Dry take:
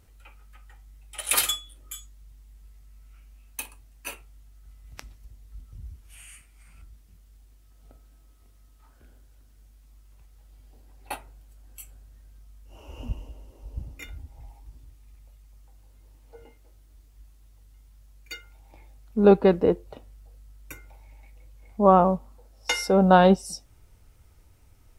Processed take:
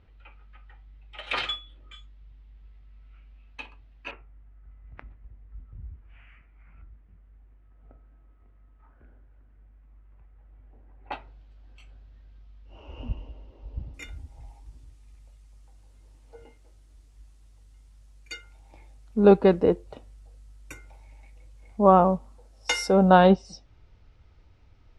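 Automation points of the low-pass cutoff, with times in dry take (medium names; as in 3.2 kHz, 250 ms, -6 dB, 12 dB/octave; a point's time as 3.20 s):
low-pass 24 dB/octave
3.5 kHz
from 4.11 s 2.1 kHz
from 11.12 s 4.1 kHz
from 13.94 s 10 kHz
from 23.10 s 4.6 kHz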